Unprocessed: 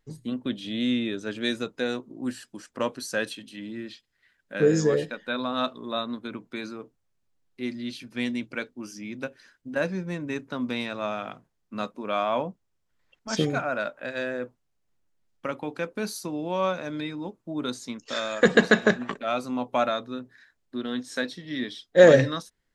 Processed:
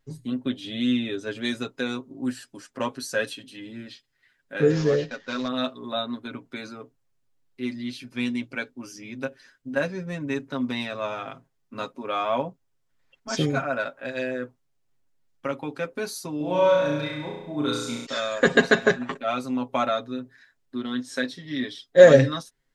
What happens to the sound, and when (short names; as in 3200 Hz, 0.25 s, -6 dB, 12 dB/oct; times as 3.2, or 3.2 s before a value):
4.7–5.48 CVSD 32 kbps
16.37–18.06 flutter echo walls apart 5.8 m, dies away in 0.96 s
whole clip: comb 7.4 ms, depth 73%; gain -1 dB